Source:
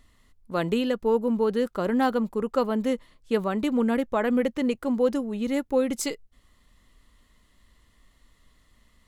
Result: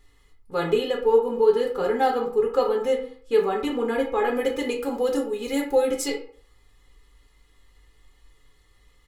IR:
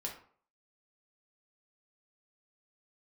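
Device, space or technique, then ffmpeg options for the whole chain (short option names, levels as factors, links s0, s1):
microphone above a desk: -filter_complex "[0:a]asettb=1/sr,asplit=3[s0][s1][s2];[s0]atrim=end=4.354[s3];[s1]atrim=start=4.35:end=5.91,asetpts=PTS-STARTPTS,afade=t=in:d=0.004:c=qsin,afade=t=out:st=1.556:d=0.004:c=qsin,highshelf=f=4800:g=10[s4];[s2]atrim=start=5.906[s5];[s3][s4]acrossfade=d=0.004:c1=hsin:c2=qsin[s6];[s6][s5]acrossfade=d=0.004:c1=qsin:c2=hsin,aecho=1:1:2.4:0.82[s7];[1:a]atrim=start_sample=2205[s8];[s7][s8]afir=irnorm=-1:irlink=0"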